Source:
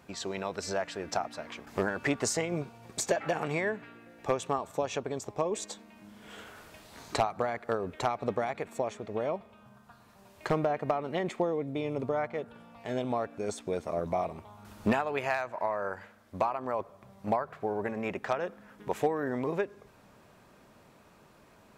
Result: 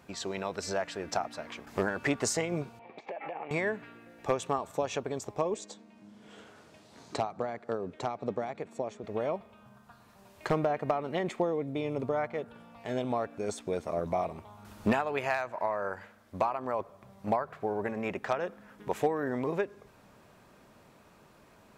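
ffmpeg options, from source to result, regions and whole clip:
ffmpeg -i in.wav -filter_complex "[0:a]asettb=1/sr,asplit=3[link_01][link_02][link_03];[link_01]atrim=end=2.794[link_04];[link_02]atrim=start=2.79:end=3.51,asetpts=PTS-STARTPTS,afade=type=in:duration=0.004:curve=qsin,afade=type=out:start_time=0.716:duration=0.004:curve=qsin,acompressor=threshold=-36dB:ratio=16:attack=3.2:release=140:knee=1:detection=peak,highpass=280,equalizer=frequency=530:width_type=q:width=4:gain=3,equalizer=frequency=810:width_type=q:width=4:gain=8,equalizer=frequency=1500:width_type=q:width=4:gain=-9,equalizer=frequency=2300:width_type=q:width=4:gain=7,lowpass=frequency=2800:width=0.5412,lowpass=frequency=2800:width=1.3066[link_05];[link_03]atrim=start=3.506[link_06];[link_04][link_05]acrossfade=duration=0.004:curve1=hsin:curve2=qsin[link_07];[link_07][link_06]acrossfade=duration=0.004:curve1=qsin:curve2=hsin,asettb=1/sr,asplit=3[link_08][link_09][link_10];[link_08]atrim=end=5.544[link_11];[link_09]atrim=start=5.54:end=9.04,asetpts=PTS-STARTPTS,afade=type=in:duration=0.004:curve=qsin,afade=type=out:start_time=3.496:duration=0.004:curve=qsin,highpass=120,lowpass=6600,equalizer=frequency=1900:width_type=o:width=2.9:gain=-7.5[link_12];[link_10]atrim=start=9.036[link_13];[link_11][link_12]acrossfade=duration=0.004:curve1=hsin:curve2=qsin[link_14];[link_14][link_13]acrossfade=duration=0.004:curve1=qsin:curve2=hsin" out.wav

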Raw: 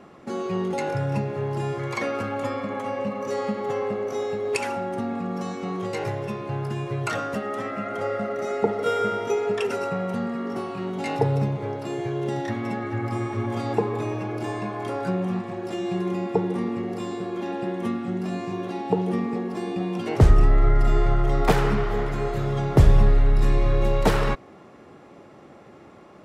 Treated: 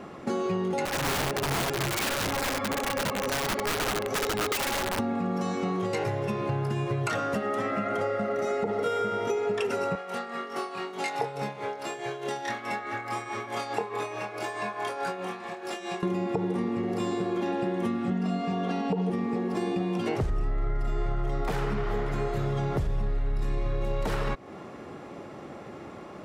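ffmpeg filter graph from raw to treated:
ffmpeg -i in.wav -filter_complex "[0:a]asettb=1/sr,asplit=3[link_01][link_02][link_03];[link_01]atrim=end=0.854[link_04];[link_02]atrim=start=0.85:end=4.99,asetpts=PTS-STARTPTS,afade=type=in:duration=0.004:curve=qsin,afade=type=out:start_time=4.136:duration=0.004:curve=qsin,flanger=delay=0.3:depth=8.5:regen=12:speed=1.4:shape=sinusoidal,aeval=exprs='(mod(20*val(0)+1,2)-1)/20':channel_layout=same[link_05];[link_03]atrim=start=4.986[link_06];[link_04][link_05]acrossfade=duration=0.004:curve1=hsin:curve2=qsin[link_07];[link_07][link_06]acrossfade=duration=0.004:curve1=qsin:curve2=hsin,asettb=1/sr,asplit=3[link_08][link_09][link_10];[link_08]atrim=end=9.954[link_11];[link_09]atrim=start=9.95:end=16.03,asetpts=PTS-STARTPTS,afade=type=in:duration=0.004:curve=qsin,afade=type=out:start_time=6.076:duration=0.004:curve=qsin,highpass=frequency=1200:poles=1,tremolo=f=4.7:d=0.64,asplit=2[link_12][link_13];[link_13]adelay=24,volume=-5dB[link_14];[link_12][link_14]amix=inputs=2:normalize=0,atrim=end_sample=268128[link_15];[link_10]atrim=start=16.026[link_16];[link_11][link_15]acrossfade=duration=0.004:curve1=hsin:curve2=qsin[link_17];[link_17][link_16]acrossfade=duration=0.004:curve1=qsin:curve2=hsin,asettb=1/sr,asplit=3[link_18][link_19][link_20];[link_18]atrim=end=18.104[link_21];[link_19]atrim=start=18.1:end=19.1,asetpts=PTS-STARTPTS,afade=type=in:duration=0.004:curve=qsin,afade=type=out:start_time=0.996:duration=0.004:curve=qsin,aecho=1:1:4.3:0.91,atrim=end_sample=44100,adynamicsmooth=sensitivity=4:basefreq=7500[link_22];[link_20]atrim=start=19.096[link_23];[link_21][link_22]acrossfade=duration=0.004:curve1=hsin:curve2=qsin[link_24];[link_24][link_23]acrossfade=duration=0.004:curve1=qsin:curve2=hsin,alimiter=limit=-14.5dB:level=0:latency=1:release=66,acompressor=threshold=-31dB:ratio=6,volume=5.5dB" out.wav

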